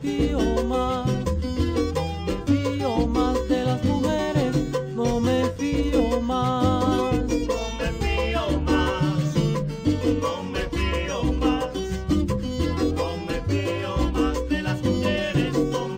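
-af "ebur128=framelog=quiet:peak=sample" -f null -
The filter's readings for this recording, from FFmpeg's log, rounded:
Integrated loudness:
  I:         -23.9 LUFS
  Threshold: -33.9 LUFS
Loudness range:
  LRA:         2.0 LU
  Threshold: -43.9 LUFS
  LRA low:   -25.0 LUFS
  LRA high:  -23.0 LUFS
Sample peak:
  Peak:       -9.9 dBFS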